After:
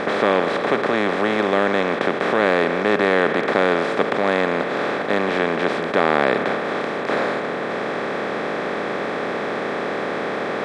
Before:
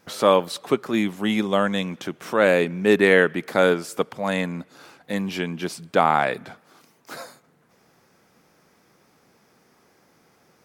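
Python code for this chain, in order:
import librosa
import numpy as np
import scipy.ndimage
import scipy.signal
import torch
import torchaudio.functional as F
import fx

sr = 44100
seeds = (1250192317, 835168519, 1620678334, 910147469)

y = fx.bin_compress(x, sr, power=0.2)
y = fx.air_absorb(y, sr, metres=110.0)
y = y * 10.0 ** (-6.5 / 20.0)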